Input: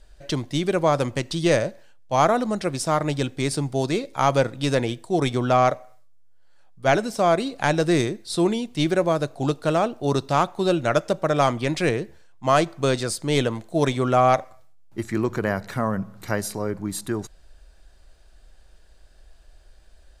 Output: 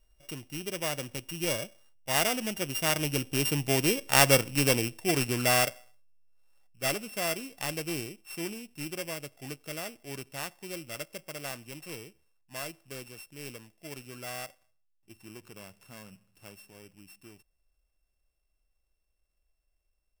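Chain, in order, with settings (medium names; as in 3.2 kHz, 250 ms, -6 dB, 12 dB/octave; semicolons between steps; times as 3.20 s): sorted samples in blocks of 16 samples; Doppler pass-by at 4.14 s, 6 m/s, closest 5.5 m; treble shelf 5 kHz +8.5 dB; trim -3 dB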